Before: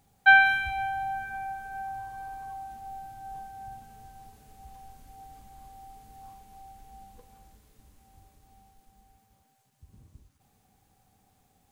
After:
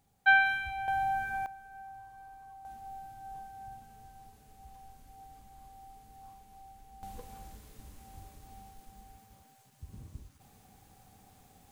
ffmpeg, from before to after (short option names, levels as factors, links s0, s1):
-af "asetnsamples=n=441:p=0,asendcmd='0.88 volume volume 1.5dB;1.46 volume volume -11dB;2.65 volume volume -4dB;7.03 volume volume 7dB',volume=0.501"